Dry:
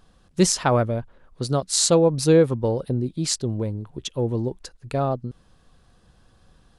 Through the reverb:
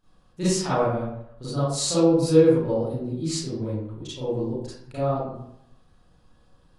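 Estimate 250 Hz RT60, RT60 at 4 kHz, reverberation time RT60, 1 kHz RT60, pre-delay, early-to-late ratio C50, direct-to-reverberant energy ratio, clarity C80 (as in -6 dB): 0.75 s, 0.45 s, 0.75 s, 0.80 s, 31 ms, -4.0 dB, -12.5 dB, 2.0 dB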